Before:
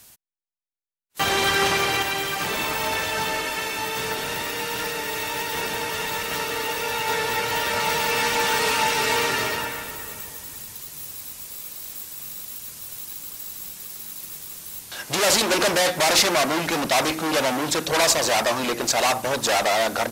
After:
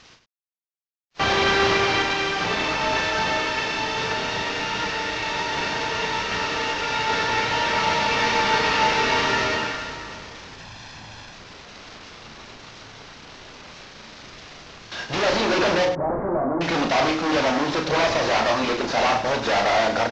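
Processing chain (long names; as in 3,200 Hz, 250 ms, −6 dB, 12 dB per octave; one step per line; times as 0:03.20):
variable-slope delta modulation 32 kbit/s
0:10.58–0:11.33: comb filter 1.2 ms, depth 51%
0:15.85–0:16.61: Gaussian smoothing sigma 8.3 samples
on a send: loudspeakers that aren't time-aligned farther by 12 metres −6 dB, 34 metres −10 dB
on the sum: level +2 dB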